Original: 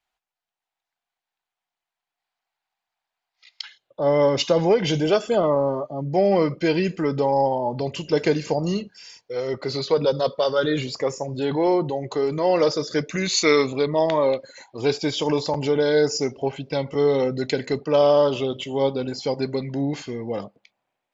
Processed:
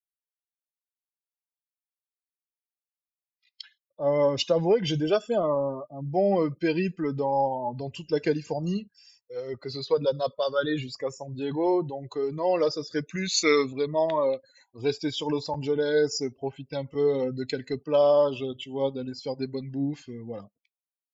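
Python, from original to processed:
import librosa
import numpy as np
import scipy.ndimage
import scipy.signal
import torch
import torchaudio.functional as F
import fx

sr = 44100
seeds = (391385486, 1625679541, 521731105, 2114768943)

y = fx.bin_expand(x, sr, power=1.5)
y = y * librosa.db_to_amplitude(-2.0)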